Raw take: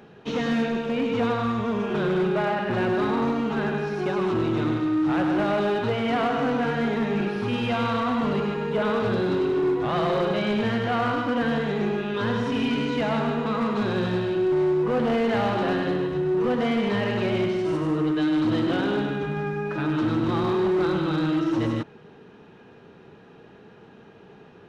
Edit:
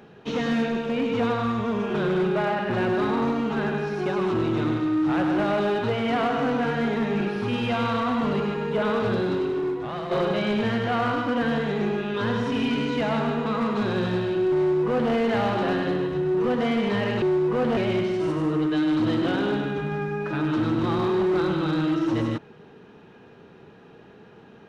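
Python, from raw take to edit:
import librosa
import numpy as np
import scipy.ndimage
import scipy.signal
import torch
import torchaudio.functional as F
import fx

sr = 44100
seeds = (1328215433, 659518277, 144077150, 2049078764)

y = fx.edit(x, sr, fx.fade_out_to(start_s=9.13, length_s=0.98, floor_db=-9.5),
    fx.duplicate(start_s=14.57, length_s=0.55, to_s=17.22), tone=tone)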